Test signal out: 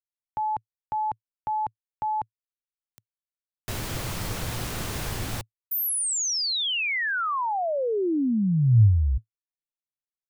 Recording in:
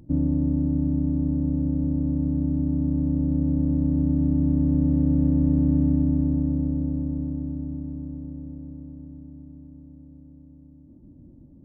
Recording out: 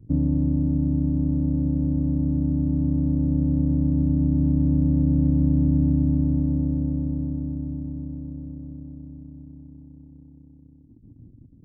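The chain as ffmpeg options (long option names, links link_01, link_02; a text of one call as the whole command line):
ffmpeg -i in.wav -filter_complex "[0:a]anlmdn=0.1,equalizer=frequency=110:width_type=o:width=0.52:gain=10,acrossover=split=270[link_01][link_02];[link_02]alimiter=limit=-23.5dB:level=0:latency=1:release=423[link_03];[link_01][link_03]amix=inputs=2:normalize=0" out.wav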